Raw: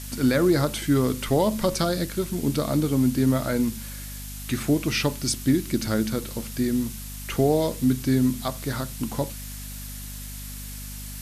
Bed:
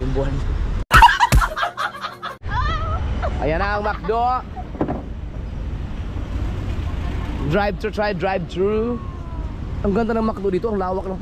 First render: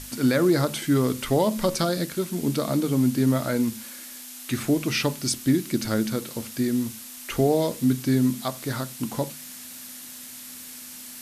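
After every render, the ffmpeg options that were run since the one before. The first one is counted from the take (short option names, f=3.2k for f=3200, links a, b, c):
-af "bandreject=f=50:t=h:w=6,bandreject=f=100:t=h:w=6,bandreject=f=150:t=h:w=6,bandreject=f=200:t=h:w=6"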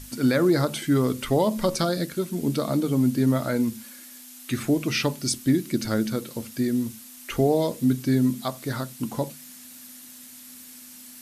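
-af "afftdn=nr=6:nf=-41"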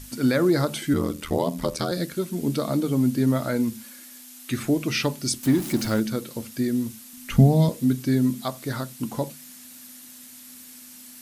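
-filter_complex "[0:a]asettb=1/sr,asplit=3[a][b][c];[a]atrim=end=0.934[d];[b]atrim=start=0.93:end=1.92,asetpts=PTS-STARTPTS,afade=t=in:d=0.004:c=qsin,afade=t=out:st=0.986:d=0.004:c=qsin,aeval=exprs='val(0)*sin(2*PI*40*n/s)':c=same[e];[c]atrim=start=1.916[f];[d][e]acrossfade=d=0.004:c1=hsin:c2=qsin[g];[g][f]acrossfade=d=0.004:c1=qsin:c2=hsin,asettb=1/sr,asplit=3[h][i][j];[h]atrim=end=5.434[k];[i]atrim=start=5.43:end=6,asetpts=PTS-STARTPTS,afade=t=in:d=0.004:c=qsin,afade=t=out:st=0.566:d=0.004:c=qsin,aeval=exprs='val(0)+0.5*0.0299*sgn(val(0))':c=same[l];[j]atrim=start=5.996[m];[k][l]acrossfade=d=0.004:c1=hsin:c2=qsin[n];[n][m]acrossfade=d=0.004:c1=qsin:c2=hsin,asettb=1/sr,asplit=3[o][p][q];[o]atrim=end=7.134[r];[p]atrim=start=7.13:end=7.69,asetpts=PTS-STARTPTS,afade=t=in:d=0.004:c=qsin,afade=t=out:st=0.556:d=0.004:c=qsin,lowshelf=f=270:t=q:w=3:g=9.5[s];[q]atrim=start=7.686[t];[r][s]acrossfade=d=0.004:c1=hsin:c2=qsin[u];[u][t]acrossfade=d=0.004:c1=qsin:c2=hsin"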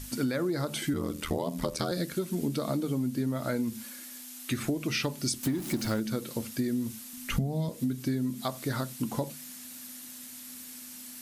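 -af "acompressor=threshold=-26dB:ratio=12"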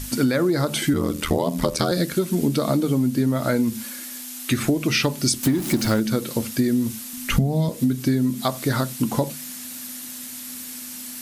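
-af "volume=9.5dB"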